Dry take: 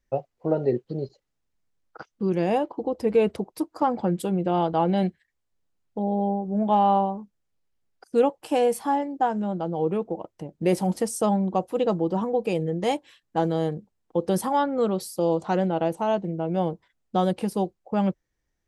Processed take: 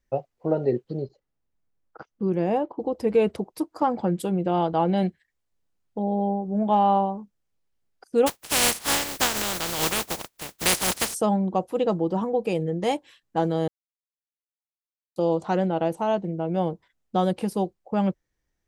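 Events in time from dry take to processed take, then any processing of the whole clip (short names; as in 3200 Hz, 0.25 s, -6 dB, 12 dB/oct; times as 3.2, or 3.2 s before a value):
1.02–2.8 high shelf 2300 Hz -10.5 dB
8.26–11.13 spectral contrast lowered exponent 0.2
13.68–15.16 mute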